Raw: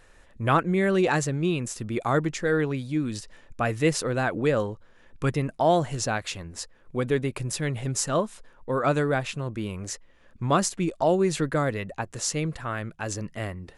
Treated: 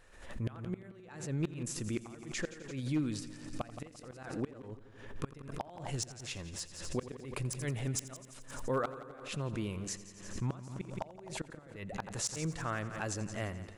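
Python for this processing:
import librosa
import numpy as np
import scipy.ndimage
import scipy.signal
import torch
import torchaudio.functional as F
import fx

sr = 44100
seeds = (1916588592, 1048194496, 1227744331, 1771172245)

y = fx.gate_flip(x, sr, shuts_db=-16.0, range_db=-28)
y = 10.0 ** (-18.5 / 20.0) * (np.abs((y / 10.0 ** (-18.5 / 20.0) + 3.0) % 4.0 - 2.0) - 1.0)
y = fx.echo_heads(y, sr, ms=86, heads='first and second', feedback_pct=57, wet_db=-17)
y = fx.pre_swell(y, sr, db_per_s=77.0)
y = y * 10.0 ** (-6.0 / 20.0)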